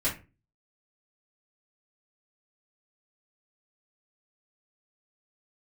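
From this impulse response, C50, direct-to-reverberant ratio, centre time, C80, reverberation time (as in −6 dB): 9.5 dB, −8.5 dB, 22 ms, 17.0 dB, 0.30 s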